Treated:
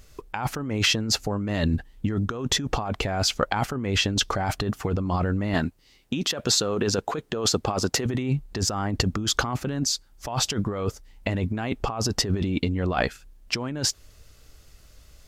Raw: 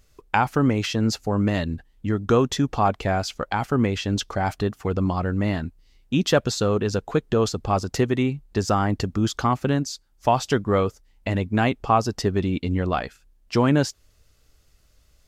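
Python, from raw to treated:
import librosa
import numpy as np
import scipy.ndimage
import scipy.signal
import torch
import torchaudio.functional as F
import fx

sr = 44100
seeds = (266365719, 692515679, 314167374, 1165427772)

y = fx.highpass(x, sr, hz=230.0, slope=6, at=(5.54, 8.06))
y = fx.over_compress(y, sr, threshold_db=-28.0, ratio=-1.0)
y = y * 10.0 ** (2.5 / 20.0)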